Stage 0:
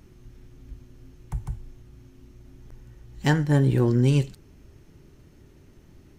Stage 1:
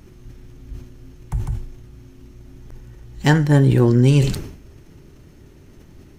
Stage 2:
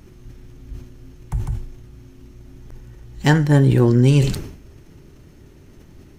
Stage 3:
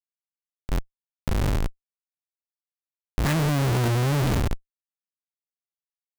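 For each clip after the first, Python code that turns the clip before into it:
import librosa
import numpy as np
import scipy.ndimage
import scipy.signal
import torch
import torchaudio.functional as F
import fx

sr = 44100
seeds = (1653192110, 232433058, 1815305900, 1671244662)

y1 = fx.sustainer(x, sr, db_per_s=78.0)
y1 = F.gain(torch.from_numpy(y1), 6.0).numpy()
y2 = y1
y3 = fx.spec_steps(y2, sr, hold_ms=100)
y3 = fx.schmitt(y3, sr, flips_db=-31.0)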